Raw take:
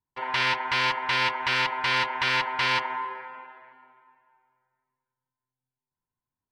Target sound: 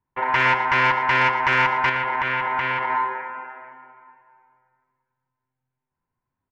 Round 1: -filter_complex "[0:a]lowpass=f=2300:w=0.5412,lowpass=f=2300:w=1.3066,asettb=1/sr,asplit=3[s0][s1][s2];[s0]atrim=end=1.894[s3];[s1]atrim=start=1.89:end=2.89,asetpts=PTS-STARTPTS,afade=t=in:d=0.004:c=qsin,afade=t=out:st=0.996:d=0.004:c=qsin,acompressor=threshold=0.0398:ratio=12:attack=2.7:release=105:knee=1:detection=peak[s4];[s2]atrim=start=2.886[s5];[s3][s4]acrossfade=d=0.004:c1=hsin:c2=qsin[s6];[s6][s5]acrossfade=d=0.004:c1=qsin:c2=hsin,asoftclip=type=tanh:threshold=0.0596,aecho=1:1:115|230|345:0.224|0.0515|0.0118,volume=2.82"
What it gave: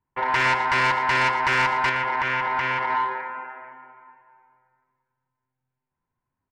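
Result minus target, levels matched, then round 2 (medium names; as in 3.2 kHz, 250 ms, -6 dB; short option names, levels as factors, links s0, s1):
saturation: distortion +8 dB
-filter_complex "[0:a]lowpass=f=2300:w=0.5412,lowpass=f=2300:w=1.3066,asettb=1/sr,asplit=3[s0][s1][s2];[s0]atrim=end=1.894[s3];[s1]atrim=start=1.89:end=2.89,asetpts=PTS-STARTPTS,afade=t=in:d=0.004:c=qsin,afade=t=out:st=0.996:d=0.004:c=qsin,acompressor=threshold=0.0398:ratio=12:attack=2.7:release=105:knee=1:detection=peak[s4];[s2]atrim=start=2.886[s5];[s3][s4]acrossfade=d=0.004:c1=hsin:c2=qsin[s6];[s6][s5]acrossfade=d=0.004:c1=qsin:c2=hsin,asoftclip=type=tanh:threshold=0.126,aecho=1:1:115|230|345:0.224|0.0515|0.0118,volume=2.82"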